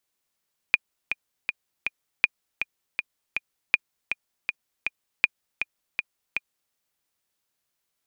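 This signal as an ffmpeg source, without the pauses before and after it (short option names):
-f lavfi -i "aevalsrc='pow(10,(-3.5-9*gte(mod(t,4*60/160),60/160))/20)*sin(2*PI*2430*mod(t,60/160))*exp(-6.91*mod(t,60/160)/0.03)':d=6:s=44100"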